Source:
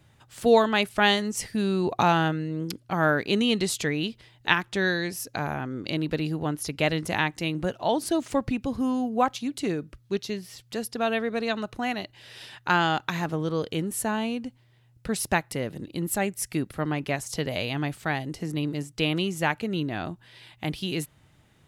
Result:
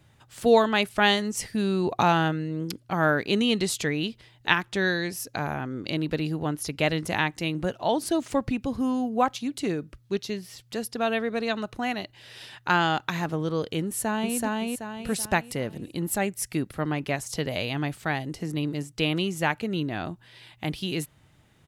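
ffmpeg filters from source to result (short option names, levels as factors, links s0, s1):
-filter_complex "[0:a]asplit=2[s0][s1];[s1]afade=t=in:st=13.85:d=0.01,afade=t=out:st=14.37:d=0.01,aecho=0:1:380|760|1140|1520|1900:0.891251|0.3565|0.1426|0.0570401|0.022816[s2];[s0][s2]amix=inputs=2:normalize=0"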